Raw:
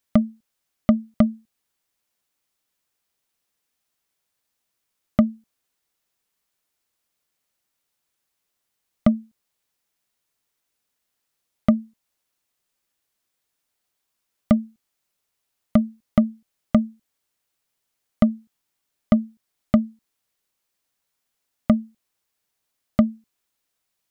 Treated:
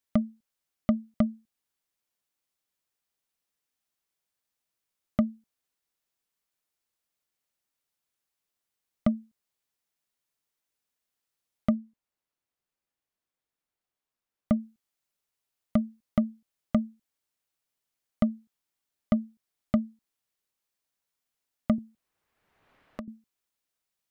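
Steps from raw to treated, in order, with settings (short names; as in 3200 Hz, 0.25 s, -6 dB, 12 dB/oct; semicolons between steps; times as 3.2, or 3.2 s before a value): 11.75–14.6 high shelf 2800 Hz -9 dB; 21.78–23.08 three-band squash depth 100%; gain -7.5 dB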